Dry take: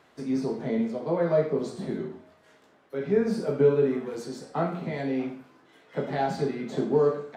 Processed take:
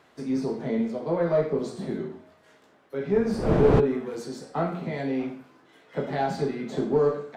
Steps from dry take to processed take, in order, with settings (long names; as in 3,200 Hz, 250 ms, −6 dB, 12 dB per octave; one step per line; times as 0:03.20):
one-sided soft clipper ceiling −11 dBFS
0:03.14–0:03.79: wind on the microphone 400 Hz −21 dBFS
level +1 dB